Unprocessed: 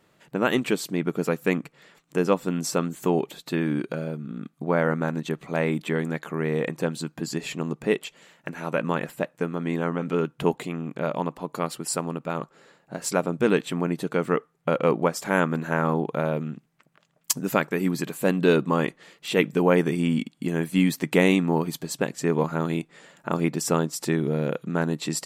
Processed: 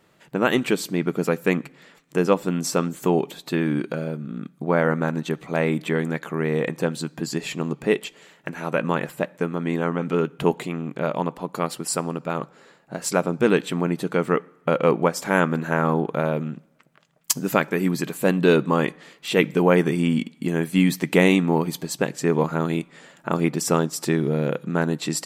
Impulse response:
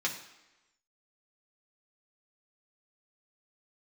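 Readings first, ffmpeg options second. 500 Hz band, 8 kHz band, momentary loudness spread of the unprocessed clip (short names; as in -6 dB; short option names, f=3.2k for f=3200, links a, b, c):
+2.5 dB, +2.5 dB, 9 LU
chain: -filter_complex "[0:a]asplit=2[a][b];[1:a]atrim=start_sample=2205,asetrate=40131,aresample=44100[c];[b][c]afir=irnorm=-1:irlink=0,volume=-22.5dB[d];[a][d]amix=inputs=2:normalize=0,volume=2dB"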